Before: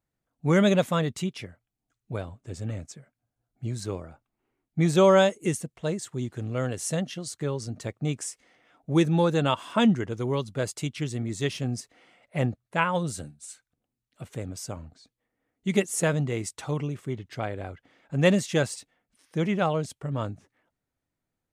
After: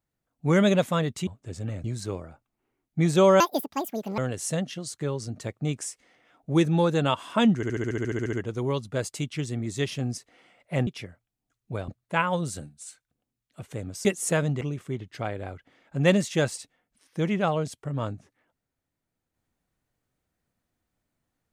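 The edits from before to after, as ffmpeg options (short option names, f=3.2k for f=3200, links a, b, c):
-filter_complex "[0:a]asplit=20[a][b][c][d][e][f][g][h][i][j][k][l][m][n][o][p][q][r][s][t];[a]atrim=end=1.272[u];[b]atrim=start=2.278:end=2.852[v];[c]atrim=start=3.638:end=5.204[w];[d]atrim=start=5.2:end=6.58,asetpts=PTS-STARTPTS,asetrate=78057,aresample=44100,atrim=end_sample=34383,asetpts=PTS-STARTPTS[x];[e]atrim=start=6.576:end=10.032[y];[f]atrim=start=9.958:end=10.032[z];[g]atrim=start=9.958:end=10.032[aa];[h]atrim=start=9.958:end=10.032[ab];[i]atrim=start=9.958:end=10.032[ac];[j]atrim=start=9.958:end=10.032[ad];[k]atrim=start=9.958:end=10.032[ae];[l]atrim=start=9.958:end=10.032[af];[m]atrim=start=9.958:end=10.032[ag];[n]atrim=start=9.958:end=10.032[ah];[o]atrim=start=9.958:end=10.032[ai];[p]atrim=start=9.958:end=12.502[aj];[q]atrim=start=1.268:end=2.282[ak];[r]atrim=start=12.498:end=14.672[al];[s]atrim=start=15.758:end=16.322[am];[t]atrim=start=16.788[an];[u][v]acrossfade=d=0.004:c1=hsin:c2=hsin[ao];[ao][w]acrossfade=d=0.004:c1=hsin:c2=hsin[ap];[ap][x]acrossfade=d=0.004:c1=hsin:c2=hsin[aq];[aq][y]acrossfade=d=0.004:c1=hsin:c2=hsin[ar];[ar][z]acrossfade=d=0.004:c1=hsin:c2=hsin[as];[as][aa]acrossfade=d=0.004:c1=hsin:c2=hsin[at];[at][ab]acrossfade=d=0.004:c1=hsin:c2=hsin[au];[au][ac]acrossfade=d=0.004:c1=hsin:c2=hsin[av];[av][ad]acrossfade=d=0.004:c1=hsin:c2=hsin[aw];[aw][ae]acrossfade=d=0.004:c1=hsin:c2=hsin[ax];[ax][af]acrossfade=d=0.004:c1=hsin:c2=hsin[ay];[ay][ag]acrossfade=d=0.004:c1=hsin:c2=hsin[az];[az][ah]acrossfade=d=0.004:c1=hsin:c2=hsin[ba];[ba][ai]acrossfade=d=0.004:c1=hsin:c2=hsin[bb];[bb][aj]acrossfade=d=0.004:c1=hsin:c2=hsin[bc];[bc][ak]acrossfade=d=0.004:c1=hsin:c2=hsin[bd];[bd][al]acrossfade=d=0.004:c1=hsin:c2=hsin[be];[be][am]acrossfade=d=0.004:c1=hsin:c2=hsin[bf];[bf][an]acrossfade=d=0.004:c1=hsin:c2=hsin"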